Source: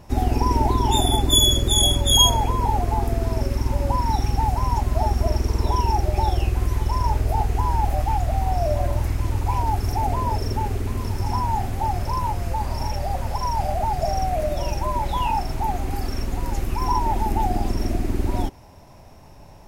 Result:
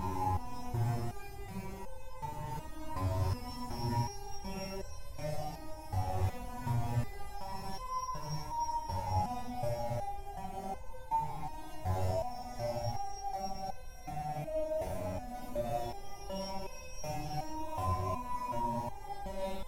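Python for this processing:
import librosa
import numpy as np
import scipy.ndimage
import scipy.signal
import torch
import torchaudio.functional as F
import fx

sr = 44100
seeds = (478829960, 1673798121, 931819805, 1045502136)

p1 = fx.over_compress(x, sr, threshold_db=-26.0, ratio=-0.5)
p2 = x + F.gain(torch.from_numpy(p1), 1.0).numpy()
p3 = fx.low_shelf(p2, sr, hz=290.0, db=-4.5)
p4 = p3 + fx.echo_split(p3, sr, split_hz=1000.0, low_ms=540, high_ms=80, feedback_pct=52, wet_db=-8, dry=0)
p5 = fx.paulstretch(p4, sr, seeds[0], factor=6.9, window_s=0.05, from_s=12.27)
p6 = fx.peak_eq(p5, sr, hz=160.0, db=10.0, octaves=1.7)
p7 = fx.notch(p6, sr, hz=4700.0, q=16.0)
p8 = fx.resonator_held(p7, sr, hz=2.7, low_hz=93.0, high_hz=510.0)
y = F.gain(torch.from_numpy(p8), -8.0).numpy()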